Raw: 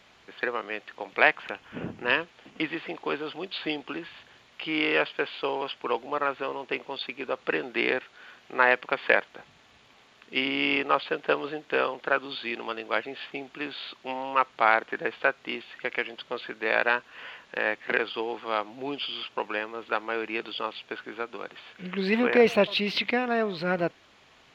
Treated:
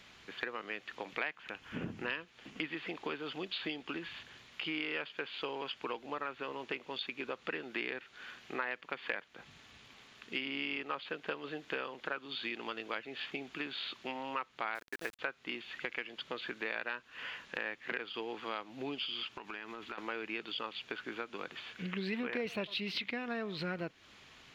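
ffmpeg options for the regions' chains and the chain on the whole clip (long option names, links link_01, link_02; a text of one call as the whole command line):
ffmpeg -i in.wav -filter_complex "[0:a]asettb=1/sr,asplit=3[link_01][link_02][link_03];[link_01]atrim=end=14.754[link_04];[link_02]atrim=start=14.75:end=15.19,asetpts=PTS-STARTPTS,afade=type=in:duration=0.004:curve=qsin,afade=type=out:start_time=0.436:duration=0.004:curve=qsin,equalizer=frequency=140:width_type=o:width=1.5:gain=-9,aeval=exprs='val(0)*gte(abs(val(0)),0.0178)':channel_layout=same[link_05];[link_03]atrim=start=15.186[link_06];[link_04][link_05]acrossfade=duration=0.004:curve1=hsin:curve2=qsin[link_07];[link_07][link_06]acrossfade=duration=0.004:curve1=qsin:curve2=hsin,asettb=1/sr,asplit=3[link_08][link_09][link_10];[link_08]atrim=end=19.304[link_11];[link_09]atrim=start=19.3:end=19.98,asetpts=PTS-STARTPTS,afade=type=in:duration=0.004:curve=qsin,afade=type=out:start_time=0.676:duration=0.004:curve=qsin,equalizer=frequency=510:width_type=o:width=0.24:gain=-12.5,acompressor=threshold=-37dB:ratio=12:attack=3.2:release=140:knee=1:detection=peak[link_12];[link_10]atrim=start=19.976[link_13];[link_11][link_12]acrossfade=duration=0.004:curve1=hsin:curve2=qsin[link_14];[link_14][link_13]acrossfade=duration=0.004:curve1=qsin:curve2=hsin,equalizer=frequency=670:width_type=o:width=1.6:gain=-7,acompressor=threshold=-38dB:ratio=4,volume=1.5dB" out.wav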